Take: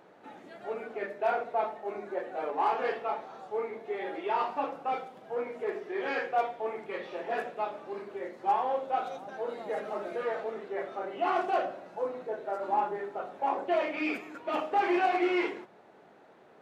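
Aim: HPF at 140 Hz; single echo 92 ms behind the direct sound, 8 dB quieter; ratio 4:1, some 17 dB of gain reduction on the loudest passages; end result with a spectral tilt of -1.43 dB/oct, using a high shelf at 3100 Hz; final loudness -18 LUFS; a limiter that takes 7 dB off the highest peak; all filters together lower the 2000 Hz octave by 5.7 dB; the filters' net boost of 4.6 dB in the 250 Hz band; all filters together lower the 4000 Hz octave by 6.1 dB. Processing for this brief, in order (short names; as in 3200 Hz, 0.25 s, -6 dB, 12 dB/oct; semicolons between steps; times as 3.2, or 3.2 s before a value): HPF 140 Hz; bell 250 Hz +8 dB; bell 2000 Hz -7 dB; high shelf 3100 Hz +4 dB; bell 4000 Hz -8.5 dB; compressor 4:1, threshold -43 dBFS; limiter -38.5 dBFS; echo 92 ms -8 dB; gain +29 dB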